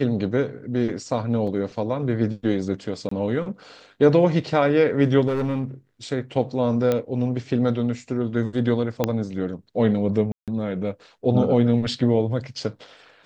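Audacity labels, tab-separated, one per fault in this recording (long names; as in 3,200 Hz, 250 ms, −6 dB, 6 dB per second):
1.470000	1.470000	drop-out 4.4 ms
3.090000	3.110000	drop-out 24 ms
5.280000	5.640000	clipping −20 dBFS
6.920000	6.920000	click −10 dBFS
9.040000	9.040000	click −7 dBFS
10.320000	10.480000	drop-out 157 ms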